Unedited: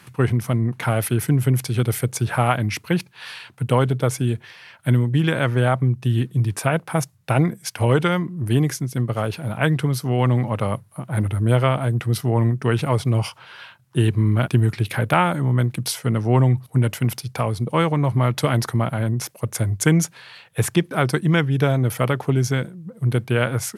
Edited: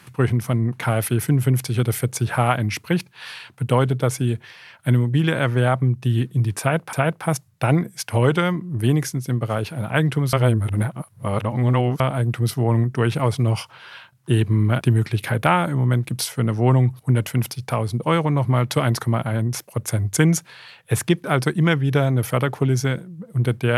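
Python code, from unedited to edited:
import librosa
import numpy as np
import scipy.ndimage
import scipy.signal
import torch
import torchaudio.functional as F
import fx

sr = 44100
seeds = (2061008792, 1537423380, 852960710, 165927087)

y = fx.edit(x, sr, fx.repeat(start_s=6.6, length_s=0.33, count=2),
    fx.reverse_span(start_s=10.0, length_s=1.67), tone=tone)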